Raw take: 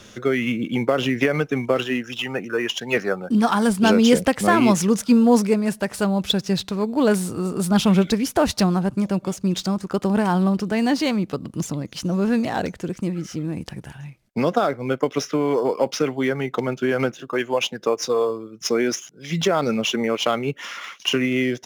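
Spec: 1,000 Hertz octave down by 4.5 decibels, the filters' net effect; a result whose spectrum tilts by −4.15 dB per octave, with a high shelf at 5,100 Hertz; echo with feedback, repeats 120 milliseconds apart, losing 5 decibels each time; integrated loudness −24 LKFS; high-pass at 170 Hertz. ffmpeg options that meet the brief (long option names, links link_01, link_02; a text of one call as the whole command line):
ffmpeg -i in.wav -af "highpass=170,equalizer=frequency=1000:width_type=o:gain=-6.5,highshelf=frequency=5100:gain=5.5,aecho=1:1:120|240|360|480|600|720|840:0.562|0.315|0.176|0.0988|0.0553|0.031|0.0173,volume=-2.5dB" out.wav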